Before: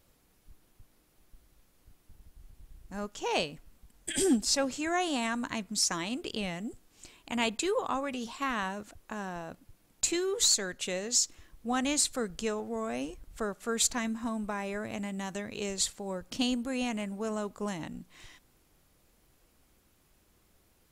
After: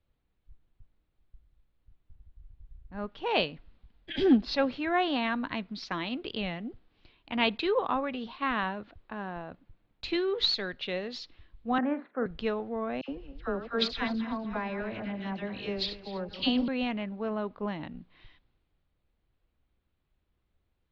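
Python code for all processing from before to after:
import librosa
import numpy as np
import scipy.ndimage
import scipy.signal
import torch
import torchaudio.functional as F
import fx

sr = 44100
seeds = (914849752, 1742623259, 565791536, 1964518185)

y = fx.chain(x, sr, fx.ellip_bandpass(low_hz=210.0, high_hz=1700.0, order=3, stop_db=50),
    fx.doubler(ms=45.0, db=-11.0), at=(11.78, 12.26))
y = fx.chain(y, sr, fx.reverse_delay_fb(ms=124, feedback_pct=61, wet_db=-10.0),
    fx.peak_eq(hz=5000.0, db=6.5, octaves=0.23),
    fx.dispersion(late='lows', ms=73.0, hz=1500.0), at=(13.01, 16.68))
y = scipy.signal.sosfilt(scipy.signal.butter(8, 4200.0, 'lowpass', fs=sr, output='sos'), y)
y = fx.band_widen(y, sr, depth_pct=40)
y = y * librosa.db_to_amplitude(1.5)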